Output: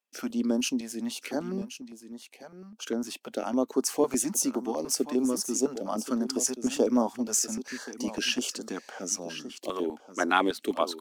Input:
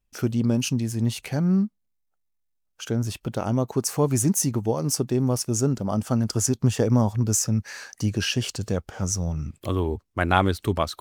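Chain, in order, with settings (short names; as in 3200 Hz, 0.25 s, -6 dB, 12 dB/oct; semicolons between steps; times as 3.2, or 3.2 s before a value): Chebyshev high-pass 250 Hz, order 4; high shelf 8700 Hz -4 dB; echo 1.08 s -12 dB; stepped notch 9.9 Hz 300–2500 Hz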